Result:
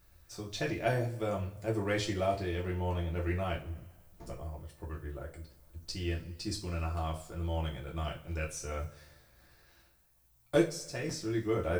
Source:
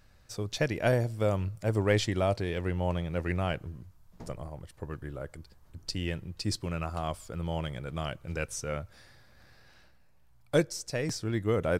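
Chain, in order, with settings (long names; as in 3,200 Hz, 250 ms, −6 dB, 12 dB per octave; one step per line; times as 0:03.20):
background noise violet −65 dBFS
0:08.79–0:10.59: leveller curve on the samples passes 1
coupled-rooms reverb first 0.28 s, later 1.5 s, from −21 dB, DRR −2.5 dB
level −8 dB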